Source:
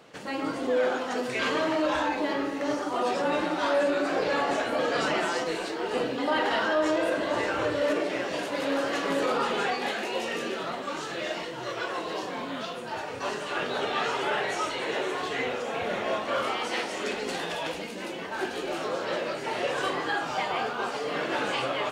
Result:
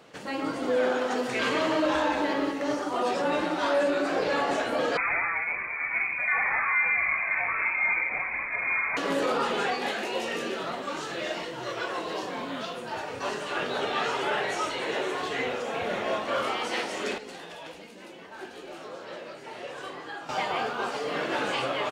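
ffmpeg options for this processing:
-filter_complex "[0:a]asplit=3[a][b][c];[a]afade=t=out:st=0.61:d=0.02[d];[b]aecho=1:1:184:0.501,afade=t=in:st=0.61:d=0.02,afade=t=out:st=2.51:d=0.02[e];[c]afade=t=in:st=2.51:d=0.02[f];[d][e][f]amix=inputs=3:normalize=0,asettb=1/sr,asplit=3[g][h][i];[g]atrim=end=4.974[j];[h]atrim=start=4.97:end=8.97,asetpts=PTS-STARTPTS,afade=t=in:d=0.004:c=qsin,afade=t=out:st=3.996:d=0.004:c=qsin,lowpass=f=2.3k:t=q:w=0.5098,lowpass=f=2.3k:t=q:w=0.6013,lowpass=f=2.3k:t=q:w=0.9,lowpass=f=2.3k:t=q:w=2.563,afreqshift=-2700[k];[i]atrim=start=8.966[l];[j][k]acrossfade=d=0.004:c1=hsin:c2=qsin[m];[m][l]acrossfade=d=0.004:c1=qsin:c2=hsin,asplit=3[n][o][p];[n]atrim=end=17.182[q];[o]atrim=start=17.178:end=20.292,asetpts=PTS-STARTPTS,volume=-10dB[r];[p]atrim=start=20.288[s];[q][r]acrossfade=d=0.004:c1=hsin:c2=hsin[t];[t][s]acrossfade=d=0.004:c1=hsin:c2=hsin"

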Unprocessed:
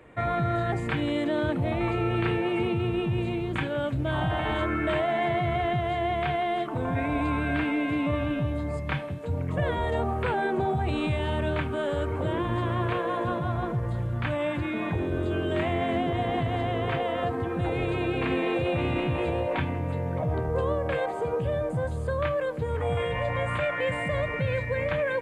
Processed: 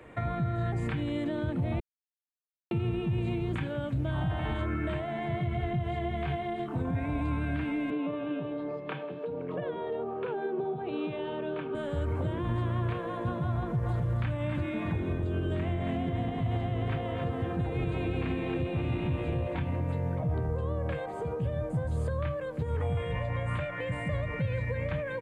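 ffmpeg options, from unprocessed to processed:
-filter_complex "[0:a]asettb=1/sr,asplit=3[a][b][c];[a]atrim=end=5.384[d];[b]atrim=start=5.38:end=6.91,asetpts=PTS-STARTPTS,afade=t=in:d=0.004:c=qsin,afade=t=out:st=1.526:d=0.004:c=qsin,asplit=2[e][f];[f]adelay=23,volume=-3dB[g];[e][g]amix=inputs=2:normalize=0,atrim=end_sample=67473[h];[c]atrim=start=6.906[i];[d][h]acrossfade=d=0.004:c1=hsin:c2=qsin[j];[j][i]acrossfade=d=0.004:c1=qsin:c2=hsin,asettb=1/sr,asplit=3[k][l][m];[k]atrim=end=7.904[n];[l]atrim=start=7.9:end=11.75,asetpts=PTS-STARTPTS,afade=t=in:d=0.004:c=qsin,afade=t=out:st=3.846:d=0.004:c=qsin,highpass=f=200:w=0.5412,highpass=f=200:w=1.3066,equalizer=f=220:t=q:w=4:g=-9,equalizer=f=430:t=q:w=4:g=10,equalizer=f=2k:t=q:w=4:g=-8,lowpass=f=3.6k:w=0.5412,lowpass=f=3.6k:w=1.3066[o];[m]atrim=start=11.746[p];[n][o]acrossfade=d=0.004:c1=hsin:c2=qsin[q];[q][p]acrossfade=d=0.004:c1=qsin:c2=hsin,asplit=3[r][s][t];[r]afade=t=out:st=13.85:d=0.02[u];[s]aecho=1:1:273:0.473,afade=t=in:st=13.85:d=0.02,afade=t=out:st=19.8:d=0.02[v];[t]afade=t=in:st=19.8:d=0.02[w];[u][v][w]amix=inputs=3:normalize=0,asplit=3[x][y][z];[x]atrim=end=1.8,asetpts=PTS-STARTPTS,afade=t=out:st=1.796:d=0.004:c=hsin[aa];[y]atrim=start=1.8:end=2.71,asetpts=PTS-STARTPTS,volume=0[ab];[z]atrim=start=2.71,asetpts=PTS-STARTPTS,afade=t=in:d=0.004:c=hsin[ac];[aa][ab][ac]concat=n=3:v=0:a=1,acrossover=split=240[ad][ae];[ae]acompressor=threshold=-36dB:ratio=6[af];[ad][af]amix=inputs=2:normalize=0,alimiter=limit=-23.5dB:level=0:latency=1:release=128,volume=1.5dB"

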